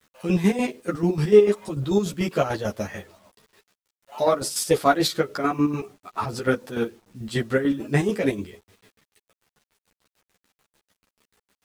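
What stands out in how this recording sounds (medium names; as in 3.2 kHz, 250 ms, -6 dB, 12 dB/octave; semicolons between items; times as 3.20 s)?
chopped level 6.8 Hz, depth 60%, duty 45%; a quantiser's noise floor 10-bit, dither none; a shimmering, thickened sound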